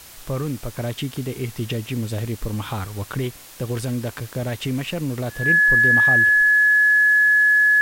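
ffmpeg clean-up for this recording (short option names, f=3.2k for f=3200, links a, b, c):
-af "bandreject=f=1.7k:w=30,afwtdn=0.0079"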